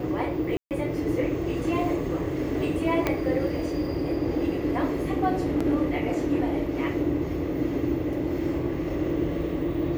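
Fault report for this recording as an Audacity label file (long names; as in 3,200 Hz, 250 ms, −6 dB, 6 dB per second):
0.570000	0.710000	drop-out 138 ms
3.070000	3.070000	click −10 dBFS
5.600000	5.610000	drop-out 5.2 ms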